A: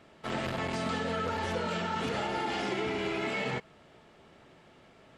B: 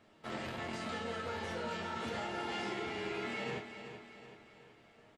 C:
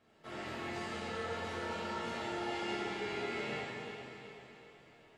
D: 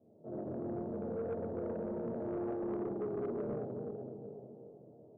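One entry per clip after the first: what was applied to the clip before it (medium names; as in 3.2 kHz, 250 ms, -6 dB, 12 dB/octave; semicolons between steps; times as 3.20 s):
chord resonator D#2 sus4, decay 0.22 s; feedback delay 379 ms, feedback 50%, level -10 dB; trim +3 dB
plate-style reverb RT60 2.5 s, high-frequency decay 1×, DRR -6.5 dB; trim -7 dB
elliptic band-pass 100–600 Hz, stop band 50 dB; saturation -38.5 dBFS, distortion -16 dB; trim +7 dB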